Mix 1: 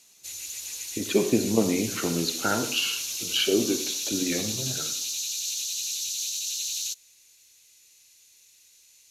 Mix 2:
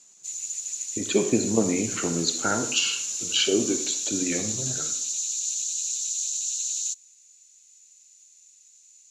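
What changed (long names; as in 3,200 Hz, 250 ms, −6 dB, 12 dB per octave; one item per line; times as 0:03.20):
background −9.5 dB
master: add low-pass with resonance 7,200 Hz, resonance Q 8.4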